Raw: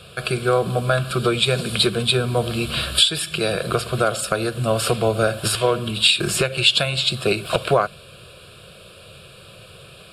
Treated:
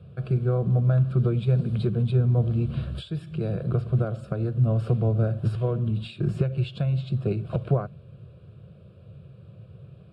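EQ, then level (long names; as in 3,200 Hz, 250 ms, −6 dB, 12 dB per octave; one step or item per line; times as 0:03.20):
resonant band-pass 120 Hz, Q 1.4
+4.5 dB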